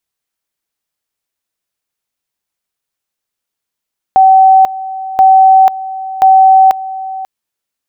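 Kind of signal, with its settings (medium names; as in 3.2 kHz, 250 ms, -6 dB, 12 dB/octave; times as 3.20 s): two-level tone 764 Hz -2 dBFS, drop 16.5 dB, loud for 0.49 s, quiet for 0.54 s, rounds 3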